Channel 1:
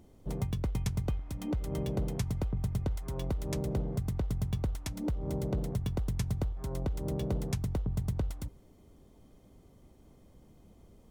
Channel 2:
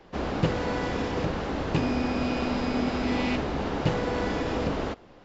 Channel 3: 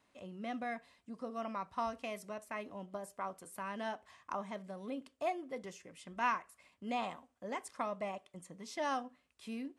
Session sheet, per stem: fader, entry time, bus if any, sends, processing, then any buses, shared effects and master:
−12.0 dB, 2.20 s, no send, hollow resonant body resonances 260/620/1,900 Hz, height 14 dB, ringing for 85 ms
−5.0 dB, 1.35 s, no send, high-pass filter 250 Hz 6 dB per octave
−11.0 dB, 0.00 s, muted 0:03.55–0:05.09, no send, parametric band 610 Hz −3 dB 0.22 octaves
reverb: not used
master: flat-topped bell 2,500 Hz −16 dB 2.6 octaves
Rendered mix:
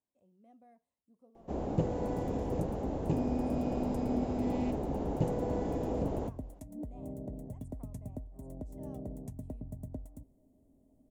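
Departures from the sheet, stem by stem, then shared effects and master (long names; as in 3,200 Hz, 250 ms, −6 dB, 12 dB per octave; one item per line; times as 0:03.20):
stem 1: entry 2.20 s → 1.75 s
stem 2: missing high-pass filter 250 Hz 6 dB per octave
stem 3 −11.0 dB → −19.5 dB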